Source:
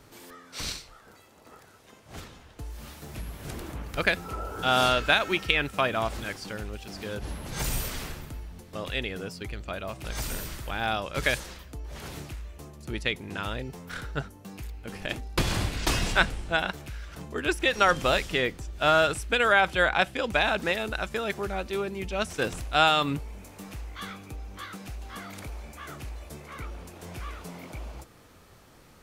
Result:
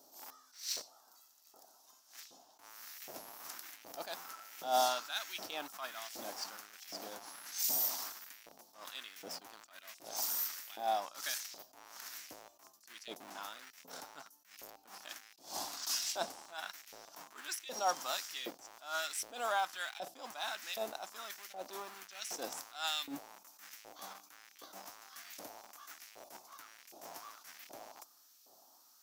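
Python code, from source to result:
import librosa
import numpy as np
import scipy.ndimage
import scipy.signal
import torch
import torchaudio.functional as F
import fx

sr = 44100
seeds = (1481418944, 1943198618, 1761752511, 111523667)

p1 = fx.curve_eq(x, sr, hz=(130.0, 280.0, 470.0, 710.0, 2100.0, 5600.0, 9300.0, 15000.0), db=(0, 8, -9, 0, -21, 8, 0, 13))
p2 = fx.schmitt(p1, sr, flips_db=-35.5)
p3 = p1 + (p2 * librosa.db_to_amplitude(-7.5))
p4 = fx.filter_lfo_highpass(p3, sr, shape='saw_up', hz=1.3, low_hz=530.0, high_hz=2400.0, q=1.9)
p5 = fx.attack_slew(p4, sr, db_per_s=150.0)
y = p5 * librosa.db_to_amplitude(-6.5)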